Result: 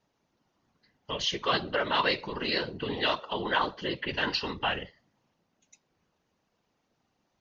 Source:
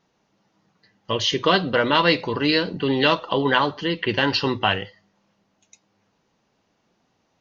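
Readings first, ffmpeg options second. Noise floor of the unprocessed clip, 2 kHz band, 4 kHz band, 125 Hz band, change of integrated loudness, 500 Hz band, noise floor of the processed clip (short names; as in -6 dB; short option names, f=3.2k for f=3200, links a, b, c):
-69 dBFS, -8.0 dB, -7.5 dB, -13.0 dB, -9.0 dB, -10.5 dB, -77 dBFS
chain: -filter_complex "[0:a]acrossover=split=550[a][b];[a]alimiter=limit=-22.5dB:level=0:latency=1:release=162[c];[c][b]amix=inputs=2:normalize=0,afftfilt=real='hypot(re,im)*cos(2*PI*random(0))':imag='hypot(re,im)*sin(2*PI*random(1))':win_size=512:overlap=0.75,volume=-1.5dB"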